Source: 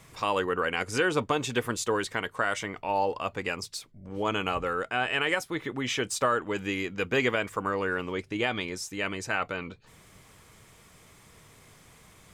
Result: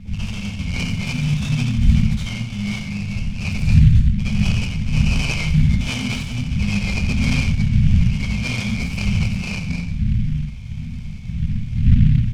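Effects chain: time reversed locally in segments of 135 ms; wind noise 150 Hz -35 dBFS; tone controls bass 0 dB, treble +7 dB; in parallel at -0.5 dB: compression, threshold -37 dBFS, peak gain reduction 18.5 dB; on the sum: overload inside the chain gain 21.5 dB; brick-wall FIR band-stop 250–2100 Hz; distance through air 440 m; delay 87 ms -8 dB; reverberation RT60 0.50 s, pre-delay 53 ms, DRR -10.5 dB; delay time shaken by noise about 2.3 kHz, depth 0.035 ms; trim +2.5 dB

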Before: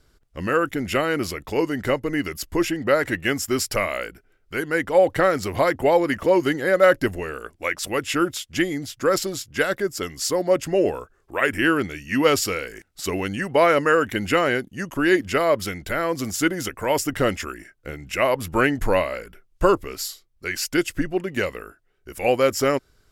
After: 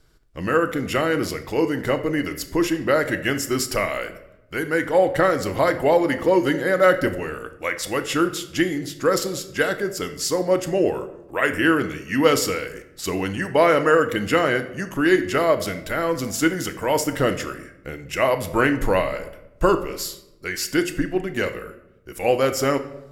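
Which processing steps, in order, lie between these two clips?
dynamic bell 2.4 kHz, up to -5 dB, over -45 dBFS, Q 7.3; on a send: reverberation RT60 0.90 s, pre-delay 6 ms, DRR 7.5 dB

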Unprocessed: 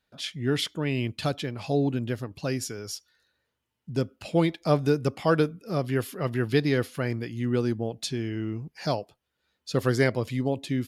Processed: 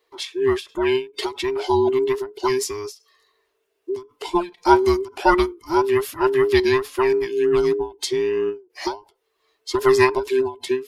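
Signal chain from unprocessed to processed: every band turned upside down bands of 500 Hz; resonant low shelf 300 Hz -11 dB, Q 3; endings held to a fixed fall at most 200 dB/s; trim +7.5 dB

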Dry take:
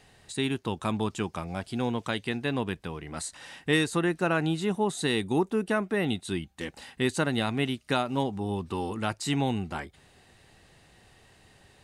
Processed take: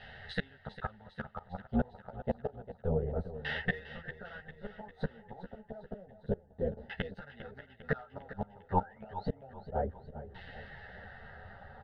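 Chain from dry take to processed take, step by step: painted sound rise, 8.79–9.26 s, 1.3–4.6 kHz -23 dBFS; AM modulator 180 Hz, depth 45%; LFO low-pass saw down 0.29 Hz 360–2500 Hz; in parallel at -8 dB: hard clipper -21 dBFS, distortion -14 dB; on the sum: inverted gate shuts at -19 dBFS, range -32 dB; static phaser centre 1.6 kHz, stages 8; on a send: feedback delay 401 ms, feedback 55%, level -13 dB; on the sum: three-phase chorus; trim +11.5 dB

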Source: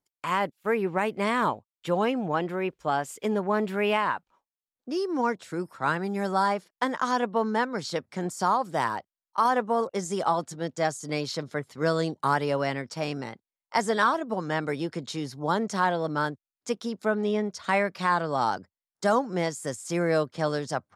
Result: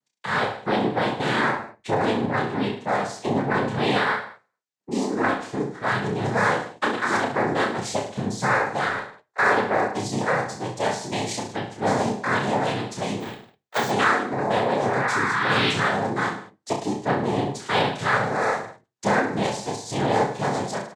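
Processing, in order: 14.38–15.71 s: painted sound rise 430–2200 Hz -28 dBFS; noise-vocoded speech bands 6; in parallel at -8 dB: hard clipper -18.5 dBFS, distortion -18 dB; on the sum: reverse bouncing-ball echo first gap 30 ms, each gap 1.15×, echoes 5; on a send at -11 dB: reverberation RT60 0.25 s, pre-delay 4 ms; 13.20–13.91 s: on the sum: careless resampling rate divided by 2×, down filtered, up hold; trim -1.5 dB

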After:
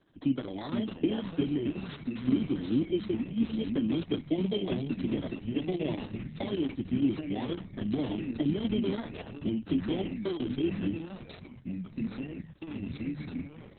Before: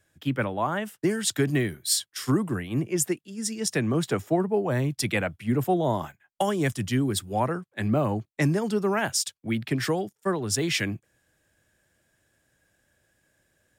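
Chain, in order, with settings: bit-reversed sample order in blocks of 16 samples; 5.95–6.54 s: hum notches 50/100/150/200/250/300/350/400 Hz; 9.10–9.91 s: dynamic bell 8.3 kHz, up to -5 dB, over -40 dBFS, Q 0.83; in parallel at -0.5 dB: peak limiter -19.5 dBFS, peak gain reduction 8 dB; on the sum: compression 4:1, threshold -34 dBFS, peak gain reduction 16 dB; small resonant body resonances 280/3200 Hz, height 15 dB, ringing for 25 ms; flange 1.4 Hz, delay 5.1 ms, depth 9.7 ms, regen -50%; 1.34–2.39 s: distance through air 59 m; ever faster or slower copies 424 ms, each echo -3 st, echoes 3, each echo -6 dB; Opus 6 kbps 48 kHz

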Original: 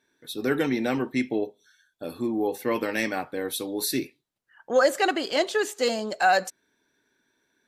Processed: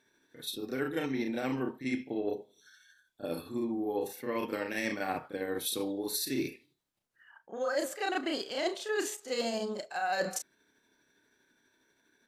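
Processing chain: reverse; compression 6:1, threshold -31 dBFS, peak gain reduction 15 dB; reverse; granular stretch 1.6×, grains 162 ms; trim +2 dB

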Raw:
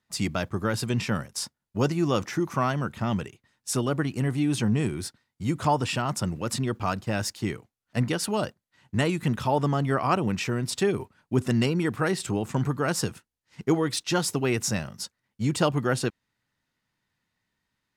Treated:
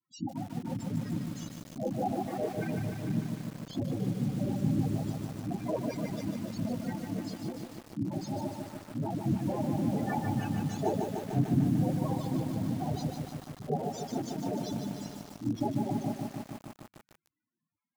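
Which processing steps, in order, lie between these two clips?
partial rectifier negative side -3 dB; noise-vocoded speech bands 4; chorus voices 4, 1 Hz, delay 28 ms, depth 3 ms; loudest bins only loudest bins 8; bit-crushed delay 149 ms, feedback 80%, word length 8-bit, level -4.5 dB

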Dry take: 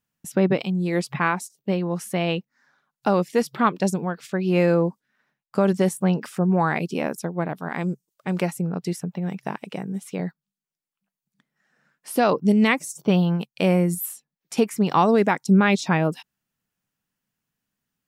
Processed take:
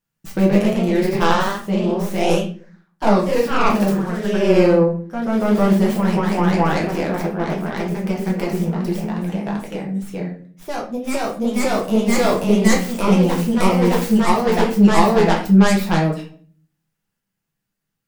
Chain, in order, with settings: tracing distortion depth 0.26 ms; simulated room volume 41 m³, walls mixed, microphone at 0.74 m; ever faster or slower copies 147 ms, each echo +1 st, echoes 3; trim -2.5 dB

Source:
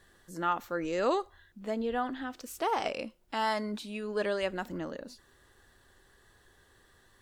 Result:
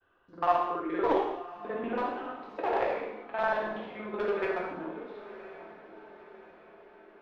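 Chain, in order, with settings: time reversed locally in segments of 47 ms; expander -57 dBFS; three-band isolator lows -15 dB, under 350 Hz, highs -21 dB, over 4.2 kHz; in parallel at -9 dB: bit crusher 4-bit; on the sum: formant shift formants -3 st; distance through air 330 m; echo that smears into a reverb 1020 ms, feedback 52%, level -15 dB; gated-style reverb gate 300 ms falling, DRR -2 dB

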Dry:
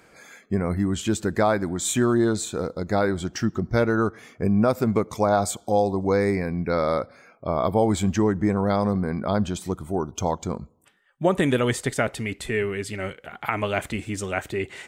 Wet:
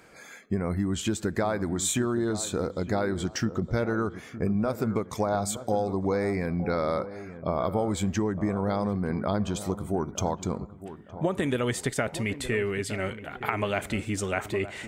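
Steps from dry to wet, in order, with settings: compression, threshold -23 dBFS, peak gain reduction 8.5 dB; on a send: feedback echo behind a low-pass 914 ms, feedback 34%, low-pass 1.7 kHz, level -13 dB

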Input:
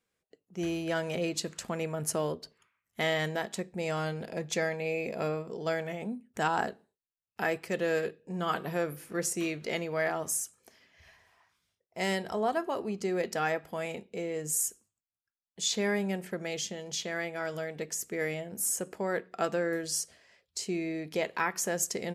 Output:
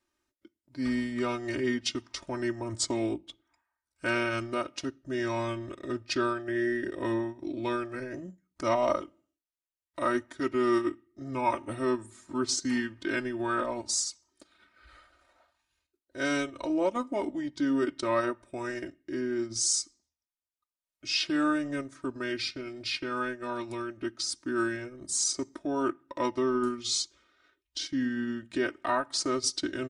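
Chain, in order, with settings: transient shaper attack -2 dB, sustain -8 dB; comb 2.4 ms, depth 92%; speed mistake 45 rpm record played at 33 rpm

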